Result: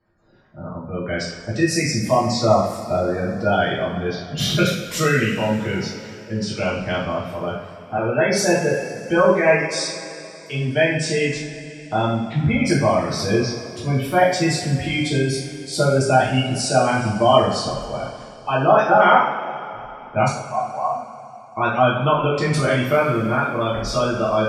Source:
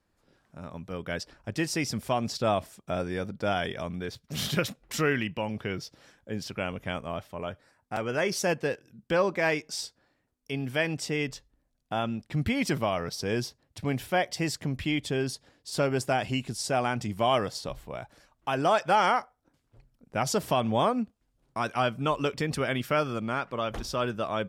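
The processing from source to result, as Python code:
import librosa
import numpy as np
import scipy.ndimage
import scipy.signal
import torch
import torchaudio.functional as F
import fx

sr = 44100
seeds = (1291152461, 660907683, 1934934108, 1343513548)

y = fx.formant_cascade(x, sr, vowel='a', at=(20.28, 21.57))
y = fx.hum_notches(y, sr, base_hz=60, count=4)
y = fx.spec_gate(y, sr, threshold_db=-20, keep='strong')
y = fx.rev_double_slope(y, sr, seeds[0], early_s=0.54, late_s=3.2, knee_db=-16, drr_db=-7.5)
y = y * librosa.db_to_amplitude(2.0)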